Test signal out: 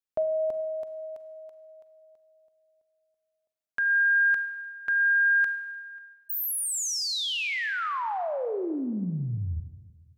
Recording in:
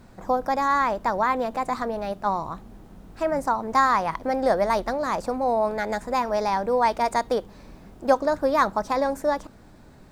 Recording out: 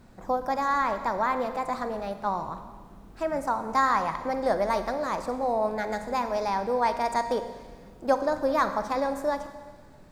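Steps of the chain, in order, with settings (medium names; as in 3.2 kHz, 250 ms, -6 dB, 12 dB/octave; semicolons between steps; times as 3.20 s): Schroeder reverb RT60 1.5 s, combs from 33 ms, DRR 9 dB; trim -4 dB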